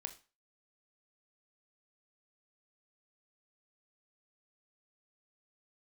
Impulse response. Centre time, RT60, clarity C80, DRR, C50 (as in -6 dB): 8 ms, 0.35 s, 19.0 dB, 6.5 dB, 14.0 dB